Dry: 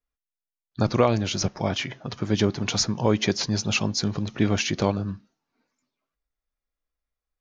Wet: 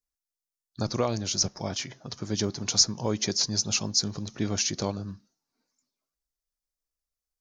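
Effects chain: resonant high shelf 3.9 kHz +9.5 dB, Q 1.5; trim -7 dB

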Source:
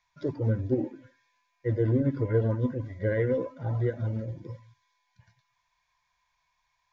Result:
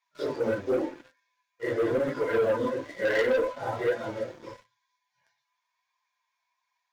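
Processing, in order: phase randomisation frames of 100 ms; high-pass 570 Hz 12 dB/octave; waveshaping leveller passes 3; flange 1 Hz, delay 5.6 ms, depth 3.8 ms, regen -47%; trim +5 dB

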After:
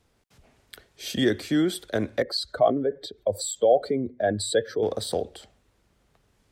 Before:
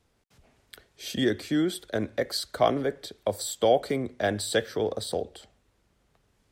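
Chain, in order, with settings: 2.22–4.83 s: spectral contrast enhancement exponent 1.7; trim +2.5 dB

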